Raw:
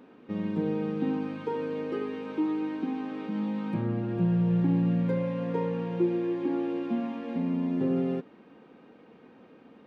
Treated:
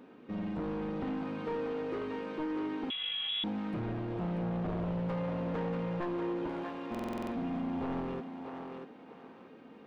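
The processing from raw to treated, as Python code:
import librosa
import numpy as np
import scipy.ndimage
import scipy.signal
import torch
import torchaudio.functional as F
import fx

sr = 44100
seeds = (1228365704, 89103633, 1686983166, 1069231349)

y = np.minimum(x, 2.0 * 10.0 ** (-26.5 / 20.0) - x)
y = fx.low_shelf(y, sr, hz=400.0, db=-9.0, at=(6.49, 6.97))
y = 10.0 ** (-31.0 / 20.0) * np.tanh(y / 10.0 ** (-31.0 / 20.0))
y = fx.echo_thinned(y, sr, ms=638, feedback_pct=32, hz=360.0, wet_db=-4)
y = fx.freq_invert(y, sr, carrier_hz=3600, at=(2.9, 3.44))
y = fx.buffer_glitch(y, sr, at_s=(6.9,), block=2048, repeats=8)
y = y * librosa.db_to_amplitude(-1.0)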